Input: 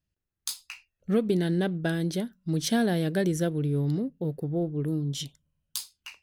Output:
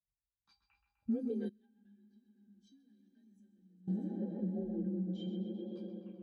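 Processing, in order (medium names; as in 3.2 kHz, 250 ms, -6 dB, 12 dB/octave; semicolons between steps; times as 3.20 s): bass shelf 180 Hz +9 dB; feedback comb 780 Hz, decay 0.3 s, mix 90%; echo with a slow build-up 80 ms, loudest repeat 5, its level -17 dB; frequency shift +39 Hz; flange 0.68 Hz, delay 5.3 ms, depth 7.6 ms, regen +54%; level-controlled noise filter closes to 650 Hz, open at -40.5 dBFS; tape echo 129 ms, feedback 86%, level -6 dB, low-pass 5.1 kHz; compression 6:1, threshold -52 dBFS, peak gain reduction 14 dB; 1.49–3.88 s: amplifier tone stack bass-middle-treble 6-0-2; spectral contrast expander 1.5:1; trim +18 dB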